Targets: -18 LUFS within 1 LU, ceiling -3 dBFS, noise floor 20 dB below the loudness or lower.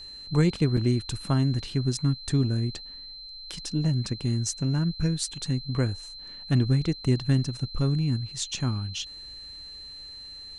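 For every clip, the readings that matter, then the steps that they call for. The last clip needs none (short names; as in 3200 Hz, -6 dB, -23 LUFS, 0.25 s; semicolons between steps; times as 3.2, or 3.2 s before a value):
dropouts 1; longest dropout 4.3 ms; steady tone 4100 Hz; tone level -40 dBFS; loudness -27.0 LUFS; peak -10.5 dBFS; loudness target -18.0 LUFS
-> interpolate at 0.77, 4.3 ms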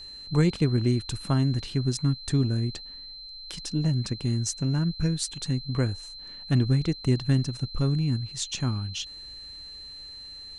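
dropouts 0; steady tone 4100 Hz; tone level -40 dBFS
-> notch 4100 Hz, Q 30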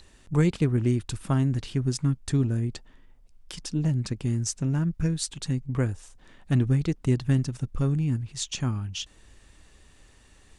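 steady tone none; loudness -27.0 LUFS; peak -10.5 dBFS; loudness target -18.0 LUFS
-> gain +9 dB; limiter -3 dBFS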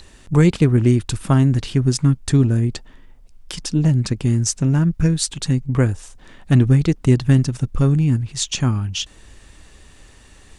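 loudness -18.0 LUFS; peak -3.0 dBFS; noise floor -47 dBFS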